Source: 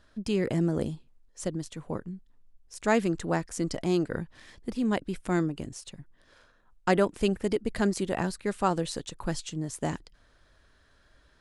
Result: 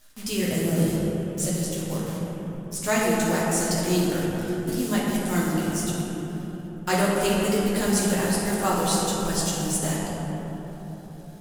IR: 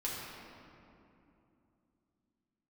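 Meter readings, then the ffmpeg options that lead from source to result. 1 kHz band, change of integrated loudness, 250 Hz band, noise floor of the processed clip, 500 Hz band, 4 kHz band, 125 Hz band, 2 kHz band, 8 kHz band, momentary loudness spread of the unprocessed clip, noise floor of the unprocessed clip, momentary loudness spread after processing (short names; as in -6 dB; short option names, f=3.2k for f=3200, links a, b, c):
+5.0 dB, +5.0 dB, +5.0 dB, -39 dBFS, +4.0 dB, +9.5 dB, +6.5 dB, +6.0 dB, +14.0 dB, 14 LU, -63 dBFS, 10 LU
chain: -filter_complex "[0:a]acrusher=bits=8:dc=4:mix=0:aa=0.000001,crystalizer=i=4:c=0[a];[1:a]atrim=start_sample=2205,asetrate=26901,aresample=44100[b];[a][b]afir=irnorm=-1:irlink=0,volume=-4dB"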